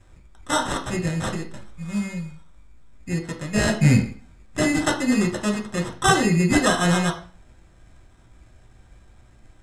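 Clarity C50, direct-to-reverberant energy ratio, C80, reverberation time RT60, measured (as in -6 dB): 10.5 dB, 1.0 dB, 15.5 dB, 0.40 s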